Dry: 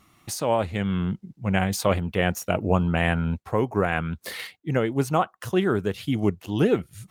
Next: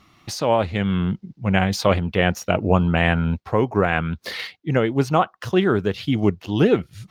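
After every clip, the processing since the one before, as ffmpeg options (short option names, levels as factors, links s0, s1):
-af "highshelf=f=6600:t=q:w=1.5:g=-9,volume=1.58"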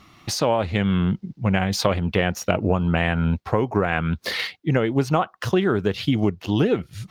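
-af "acompressor=threshold=0.1:ratio=6,volume=1.58"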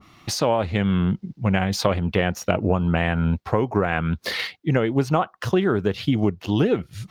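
-af "adynamicequalizer=threshold=0.0158:dfrequency=1700:dqfactor=0.7:tfrequency=1700:tqfactor=0.7:attack=5:release=100:ratio=0.375:range=1.5:mode=cutabove:tftype=highshelf"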